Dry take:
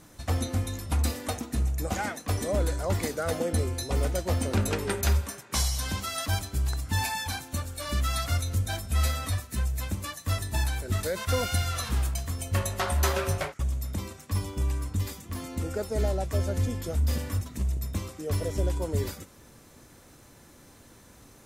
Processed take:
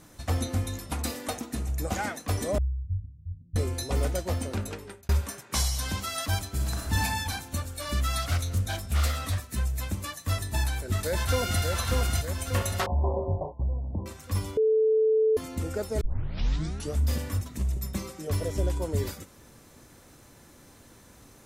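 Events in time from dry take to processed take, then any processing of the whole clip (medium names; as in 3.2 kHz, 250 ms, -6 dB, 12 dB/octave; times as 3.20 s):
0.78–1.69 s: peaking EQ 83 Hz -10 dB 1 oct
2.58–3.56 s: inverse Chebyshev low-pass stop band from 640 Hz, stop band 80 dB
4.09–5.09 s: fade out
6.48–6.95 s: reverb throw, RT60 1.3 s, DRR -1.5 dB
8.22–9.49 s: loudspeaker Doppler distortion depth 0.28 ms
10.47–11.62 s: echo throw 590 ms, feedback 55%, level -3.5 dB
12.86–14.06 s: steep low-pass 1 kHz 96 dB/octave
14.57–15.37 s: bleep 438 Hz -19 dBFS
16.01 s: tape start 0.98 s
17.75–18.28 s: comb 5.3 ms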